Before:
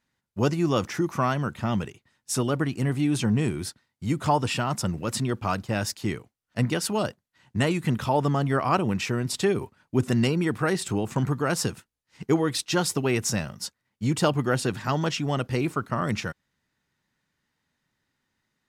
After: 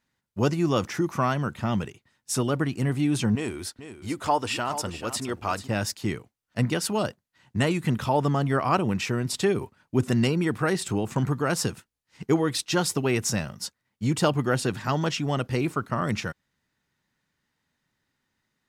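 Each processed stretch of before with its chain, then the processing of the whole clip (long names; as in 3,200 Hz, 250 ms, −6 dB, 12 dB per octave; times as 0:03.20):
0:03.35–0:05.68: parametric band 150 Hz −14 dB 1 octave + single-tap delay 437 ms −11.5 dB
whole clip: no processing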